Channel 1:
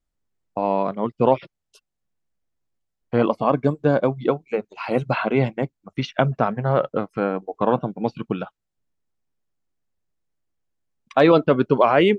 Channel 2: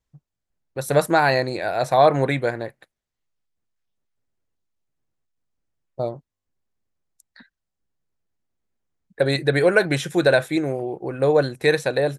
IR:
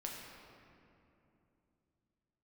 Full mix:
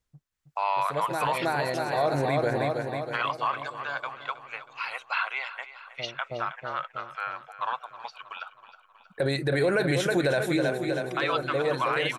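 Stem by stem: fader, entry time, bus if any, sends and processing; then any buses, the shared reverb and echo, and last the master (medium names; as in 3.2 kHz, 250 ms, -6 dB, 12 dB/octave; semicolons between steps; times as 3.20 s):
3.14 s -0.5 dB -> 3.89 s -9.5 dB, 0.00 s, no send, echo send -15 dB, high-pass 1.1 kHz 24 dB/octave; level rider gain up to 10 dB
-0.5 dB, 0.00 s, no send, echo send -9.5 dB, auto duck -14 dB, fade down 0.55 s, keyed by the first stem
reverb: none
echo: feedback delay 319 ms, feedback 55%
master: peak limiter -16 dBFS, peak gain reduction 10.5 dB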